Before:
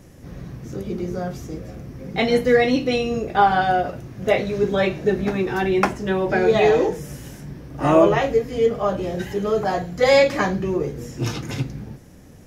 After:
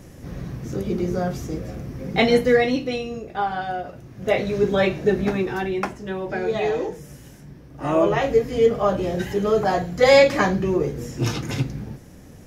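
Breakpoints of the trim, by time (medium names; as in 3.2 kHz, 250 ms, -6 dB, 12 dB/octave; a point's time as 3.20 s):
2.19 s +3 dB
3.23 s -8.5 dB
3.86 s -8.5 dB
4.49 s +0.5 dB
5.31 s +0.5 dB
5.83 s -7 dB
7.84 s -7 dB
8.39 s +1.5 dB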